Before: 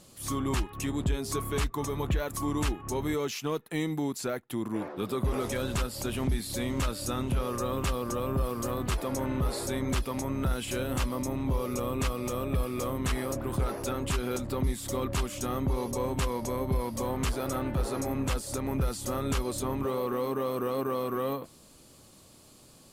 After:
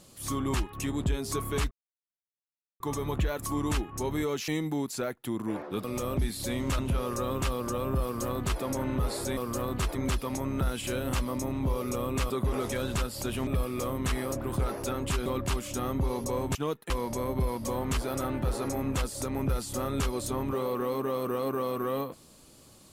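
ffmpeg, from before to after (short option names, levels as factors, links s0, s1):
-filter_complex "[0:a]asplit=13[s0][s1][s2][s3][s4][s5][s6][s7][s8][s9][s10][s11][s12];[s0]atrim=end=1.71,asetpts=PTS-STARTPTS,afade=t=out:st=1.706:d=0.004:c=hsin,apad=pad_dur=1.09[s13];[s1]atrim=start=1.71:end=3.392,asetpts=PTS-STARTPTS,afade=t=in:d=0.004:c=hsin[s14];[s2]atrim=start=3.738:end=5.102[s15];[s3]atrim=start=12.138:end=12.472[s16];[s4]atrim=start=6.268:end=6.892[s17];[s5]atrim=start=7.208:end=9.792[s18];[s6]atrim=start=8.458:end=9.042[s19];[s7]atrim=start=9.788:end=12.142[s20];[s8]atrim=start=5.098:end=6.272[s21];[s9]atrim=start=12.468:end=14.262[s22];[s10]atrim=start=14.928:end=16.222[s23];[s11]atrim=start=3.388:end=3.742[s24];[s12]atrim=start=16.218[s25];[s13][s14]concat=n=2:v=0:a=1[s26];[s26][s15]acrossfade=d=0.004:c1=hsin:c2=hsin[s27];[s27][s16]acrossfade=d=0.004:c1=hsin:c2=hsin[s28];[s28][s17]acrossfade=d=0.004:c1=hsin:c2=hsin[s29];[s29][s18]acrossfade=d=0.004:c1=hsin:c2=hsin[s30];[s30][s19]acrossfade=d=0.004:c1=hsin:c2=hsin[s31];[s31][s20]acrossfade=d=0.004:c1=hsin:c2=hsin[s32];[s32][s21]acrossfade=d=0.004:c1=hsin:c2=hsin[s33];[s33][s22]acrossfade=d=0.004:c1=hsin:c2=hsin[s34];[s34][s23]acrossfade=d=0.004:c1=hsin:c2=hsin[s35];[s35][s24]acrossfade=d=0.004:c1=hsin:c2=hsin[s36];[s36][s25]acrossfade=d=0.004:c1=hsin:c2=hsin"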